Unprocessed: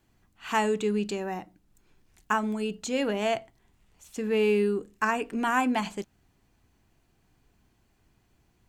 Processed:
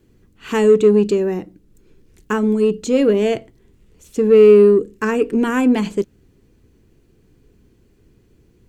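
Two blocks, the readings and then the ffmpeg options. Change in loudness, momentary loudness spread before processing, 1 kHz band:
+13.0 dB, 12 LU, +0.5 dB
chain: -filter_complex "[0:a]lowshelf=frequency=580:width_type=q:width=3:gain=7.5,asplit=2[link_01][link_02];[link_02]asoftclip=type=tanh:threshold=-17dB,volume=-7dB[link_03];[link_01][link_03]amix=inputs=2:normalize=0,volume=1.5dB"

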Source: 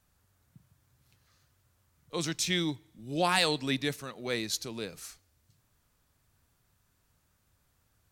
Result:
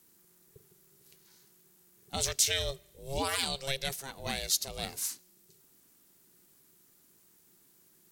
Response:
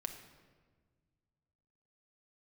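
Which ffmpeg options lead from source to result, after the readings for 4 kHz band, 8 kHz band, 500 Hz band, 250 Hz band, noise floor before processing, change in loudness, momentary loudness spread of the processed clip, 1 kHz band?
0.0 dB, +6.0 dB, −4.0 dB, −11.0 dB, −73 dBFS, −0.5 dB, 12 LU, −5.0 dB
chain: -af "aeval=exprs='val(0)*sin(2*PI*270*n/s)':channel_layout=same,alimiter=level_in=0.5dB:limit=-24dB:level=0:latency=1:release=407,volume=-0.5dB,crystalizer=i=3:c=0,volume=2.5dB"

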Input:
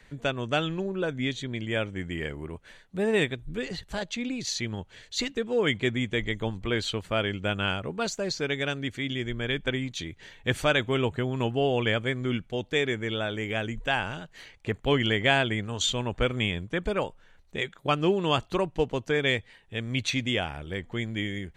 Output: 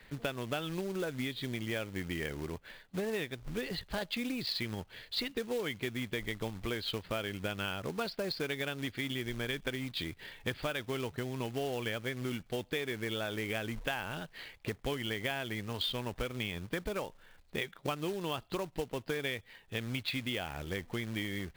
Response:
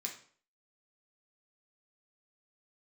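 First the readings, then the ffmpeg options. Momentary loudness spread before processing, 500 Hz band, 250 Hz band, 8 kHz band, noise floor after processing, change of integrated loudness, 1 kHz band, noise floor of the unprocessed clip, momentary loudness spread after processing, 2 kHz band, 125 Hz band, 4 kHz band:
10 LU, −9.0 dB, −8.0 dB, −9.5 dB, −61 dBFS, −8.5 dB, −9.5 dB, −57 dBFS, 4 LU, −8.5 dB, −9.0 dB, −7.0 dB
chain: -af "aresample=11025,aresample=44100,acompressor=threshold=-31dB:ratio=20,lowshelf=frequency=170:gain=-3.5,acrusher=bits=3:mode=log:mix=0:aa=0.000001"

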